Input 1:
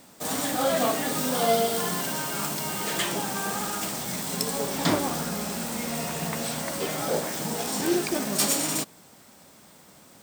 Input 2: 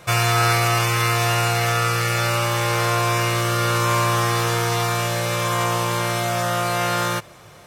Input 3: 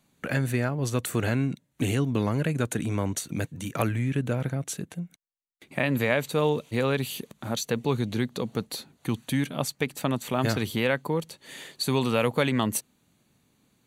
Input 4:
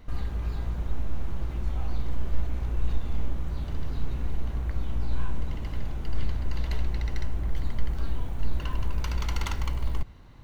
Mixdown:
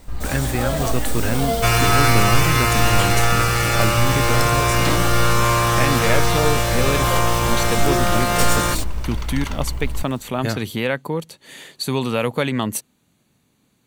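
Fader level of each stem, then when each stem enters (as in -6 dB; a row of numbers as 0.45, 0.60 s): -0.5, +1.5, +3.0, +2.5 dB; 0.00, 1.55, 0.00, 0.00 s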